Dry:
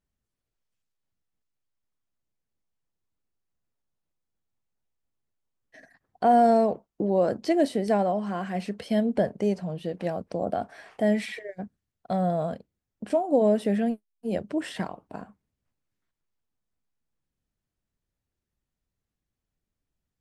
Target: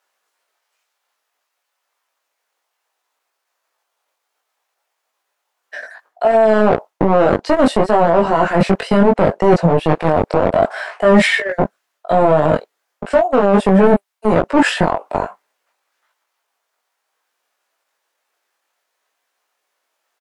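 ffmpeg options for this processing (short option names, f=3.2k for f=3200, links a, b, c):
-filter_complex "[0:a]asetrate=41625,aresample=44100,atempo=1.05946,areverse,acompressor=threshold=-30dB:ratio=8,areverse,highshelf=f=2.1k:g=-10,acrossover=split=610[a][b];[a]acrusher=bits=4:mix=0:aa=0.5[c];[c][b]amix=inputs=2:normalize=0,flanger=delay=18:depth=2.8:speed=0.62,alimiter=level_in=31dB:limit=-1dB:release=50:level=0:latency=1,volume=-1dB"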